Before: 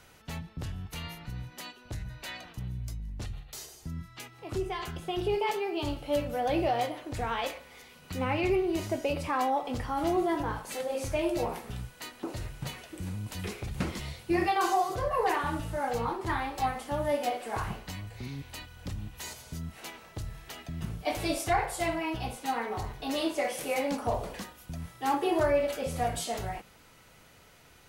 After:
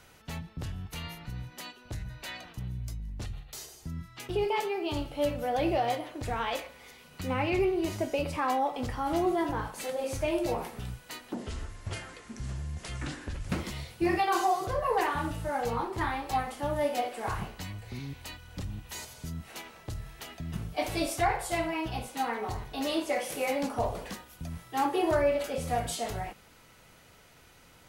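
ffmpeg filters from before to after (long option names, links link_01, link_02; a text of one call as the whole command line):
ffmpeg -i in.wav -filter_complex "[0:a]asplit=4[link_01][link_02][link_03][link_04];[link_01]atrim=end=4.292[link_05];[link_02]atrim=start=5.198:end=12.254[link_06];[link_03]atrim=start=12.25:end=13.78,asetpts=PTS-STARTPTS,asetrate=31311,aresample=44100,atrim=end_sample=95032,asetpts=PTS-STARTPTS[link_07];[link_04]atrim=start=13.776[link_08];[link_05][link_06]acrossfade=duration=0.004:curve1=hsin:curve2=hsin[link_09];[link_09][link_07]acrossfade=duration=0.004:curve1=hsin:curve2=hsin[link_10];[link_10][link_08]acrossfade=duration=0.004:curve1=hsin:curve2=hsin" out.wav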